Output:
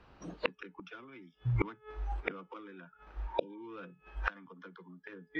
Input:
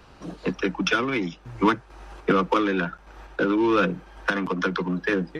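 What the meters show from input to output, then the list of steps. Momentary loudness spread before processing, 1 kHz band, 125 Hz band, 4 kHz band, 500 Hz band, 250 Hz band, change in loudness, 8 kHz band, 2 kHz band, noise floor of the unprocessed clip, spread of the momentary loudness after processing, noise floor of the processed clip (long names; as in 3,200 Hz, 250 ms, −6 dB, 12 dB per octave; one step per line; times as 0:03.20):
11 LU, −17.5 dB, −6.0 dB, −16.5 dB, −16.5 dB, −21.0 dB, −15.0 dB, can't be measured, −15.5 dB, −51 dBFS, 17 LU, −69 dBFS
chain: low-pass filter 3,500 Hz 12 dB per octave
healed spectral selection 0:03.28–0:03.57, 730–2,300 Hz both
noise reduction from a noise print of the clip's start 19 dB
hum removal 427.7 Hz, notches 8
gate with flip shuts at −24 dBFS, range −36 dB
level +10 dB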